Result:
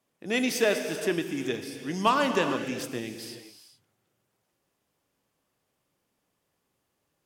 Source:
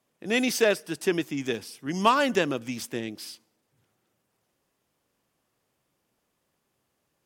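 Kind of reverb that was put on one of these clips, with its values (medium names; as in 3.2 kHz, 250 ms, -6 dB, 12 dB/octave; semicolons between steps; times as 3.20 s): gated-style reverb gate 450 ms flat, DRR 6 dB; trim -2.5 dB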